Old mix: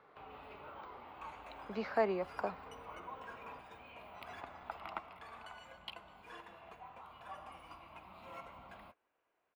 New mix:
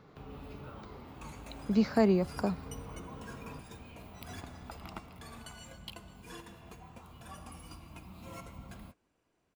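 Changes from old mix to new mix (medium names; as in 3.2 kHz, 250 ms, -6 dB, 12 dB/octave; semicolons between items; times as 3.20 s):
first sound -5.0 dB; master: remove three-band isolator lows -20 dB, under 460 Hz, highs -19 dB, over 3 kHz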